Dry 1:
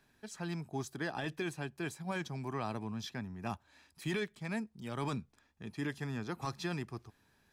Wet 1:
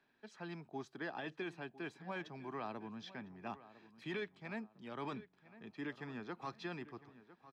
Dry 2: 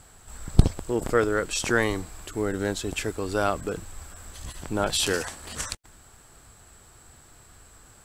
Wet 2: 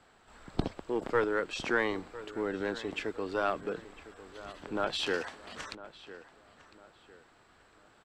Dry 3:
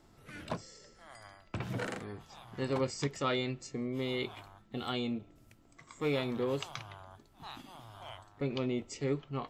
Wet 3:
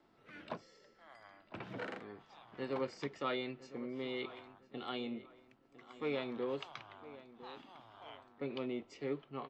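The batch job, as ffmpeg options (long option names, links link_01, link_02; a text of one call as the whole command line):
ffmpeg -i in.wav -filter_complex "[0:a]acrossover=split=190 4500:gain=0.178 1 0.0631[link_01][link_02][link_03];[link_01][link_02][link_03]amix=inputs=3:normalize=0,acrossover=split=1100[link_04][link_05];[link_04]aeval=exprs='clip(val(0),-1,0.0794)':channel_layout=same[link_06];[link_06][link_05]amix=inputs=2:normalize=0,asplit=2[link_07][link_08];[link_08]adelay=1004,lowpass=frequency=3100:poles=1,volume=-16dB,asplit=2[link_09][link_10];[link_10]adelay=1004,lowpass=frequency=3100:poles=1,volume=0.36,asplit=2[link_11][link_12];[link_12]adelay=1004,lowpass=frequency=3100:poles=1,volume=0.36[link_13];[link_07][link_09][link_11][link_13]amix=inputs=4:normalize=0,volume=-4.5dB" out.wav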